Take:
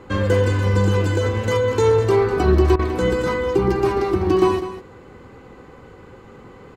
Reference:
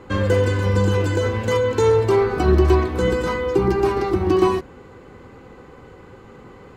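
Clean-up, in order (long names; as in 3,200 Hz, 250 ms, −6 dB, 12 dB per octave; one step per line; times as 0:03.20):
repair the gap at 0:02.76, 31 ms
echo removal 201 ms −12 dB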